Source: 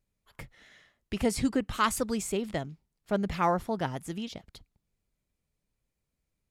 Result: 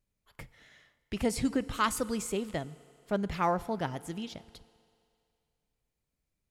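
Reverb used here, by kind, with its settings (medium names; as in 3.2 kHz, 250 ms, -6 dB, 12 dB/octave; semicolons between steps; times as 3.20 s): FDN reverb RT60 2.4 s, low-frequency decay 0.7×, high-frequency decay 1×, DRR 17.5 dB; trim -2 dB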